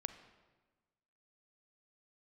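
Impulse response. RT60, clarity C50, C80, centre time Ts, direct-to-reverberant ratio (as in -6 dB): 1.3 s, 11.0 dB, 12.5 dB, 12 ms, 10.0 dB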